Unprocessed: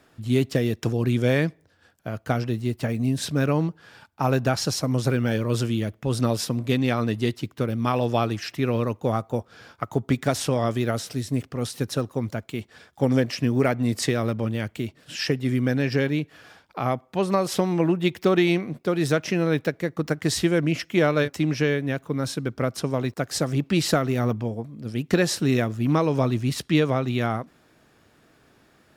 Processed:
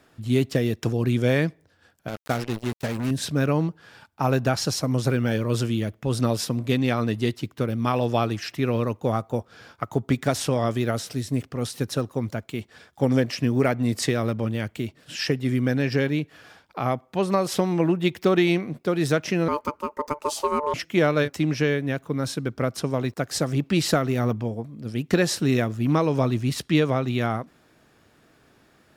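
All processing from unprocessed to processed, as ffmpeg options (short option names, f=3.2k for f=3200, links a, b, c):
-filter_complex "[0:a]asettb=1/sr,asplit=3[a][b][c];[a]atrim=end=2.084[d];[b]atrim=start=2.08:end=3.11,asetpts=PTS-STARTPTS,afade=t=in:d=0.004:c=qsin,afade=t=out:st=1.026:d=0.004:c=qsin,lowshelf=f=160:g=-6.5,acrusher=bits=4:mix=0:aa=0.5[e];[c]atrim=start=3.106[f];[d][e]acrossfade=d=0.004:c1=hsin:c2=qsin[g];[g][f]acrossfade=d=0.004:c1=qsin:c2=hsin,asettb=1/sr,asplit=3[h][i][j];[h]atrim=end=19.484[k];[i]atrim=start=19.48:end=20.74,asetpts=PTS-STARTPTS,afade=t=in:d=0.004:c=qsin,afade=t=out:st=1.256:d=0.004:c=qsin,highpass=50,equalizer=f=2.5k:t=o:w=1:g=-13,aeval=exprs='val(0)*sin(2*PI*740*n/s)':c=same[l];[j]atrim=start=20.736[m];[k][l]acrossfade=d=0.004:c1=hsin:c2=qsin[n];[n][m]acrossfade=d=0.004:c1=qsin:c2=hsin"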